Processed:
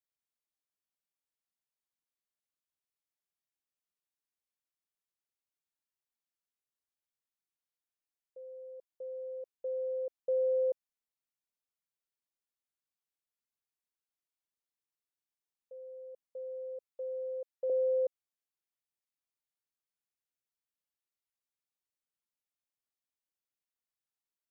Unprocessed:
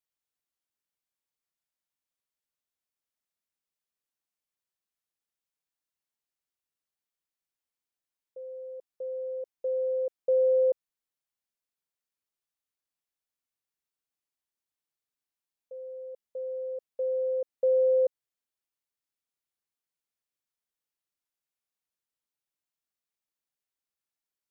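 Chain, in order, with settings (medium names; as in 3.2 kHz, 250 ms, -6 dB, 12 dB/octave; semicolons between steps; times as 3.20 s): 16.91–17.70 s: high-pass 500 Hz 12 dB/octave; trim -6.5 dB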